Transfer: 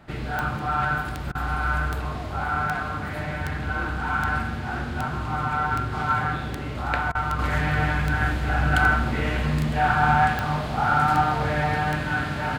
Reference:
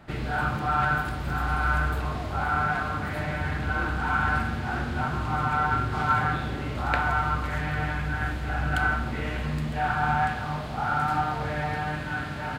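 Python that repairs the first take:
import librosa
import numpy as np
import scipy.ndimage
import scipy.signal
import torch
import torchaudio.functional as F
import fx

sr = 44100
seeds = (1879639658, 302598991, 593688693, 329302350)

y = fx.fix_declick_ar(x, sr, threshold=10.0)
y = fx.fix_interpolate(y, sr, at_s=(1.32, 7.12), length_ms=29.0)
y = fx.fix_level(y, sr, at_s=7.39, step_db=-5.5)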